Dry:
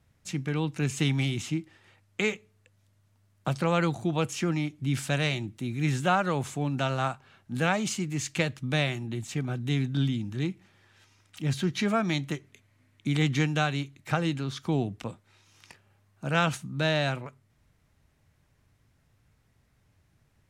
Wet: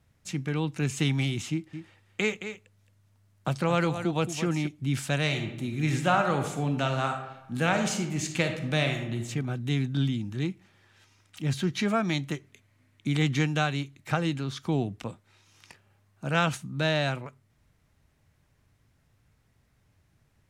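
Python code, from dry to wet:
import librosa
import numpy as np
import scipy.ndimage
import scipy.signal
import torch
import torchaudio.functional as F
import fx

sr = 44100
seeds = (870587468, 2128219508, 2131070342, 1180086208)

y = fx.echo_single(x, sr, ms=220, db=-10.0, at=(1.51, 4.67))
y = fx.reverb_throw(y, sr, start_s=5.22, length_s=4.01, rt60_s=0.94, drr_db=5.0)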